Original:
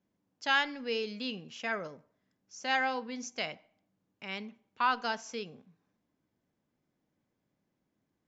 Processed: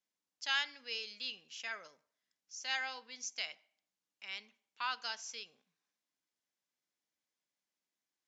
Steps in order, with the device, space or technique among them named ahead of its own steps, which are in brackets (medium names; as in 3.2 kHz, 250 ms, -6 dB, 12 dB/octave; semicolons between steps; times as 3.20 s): piezo pickup straight into a mixer (low-pass 6.5 kHz 12 dB/octave; differentiator); trim +5.5 dB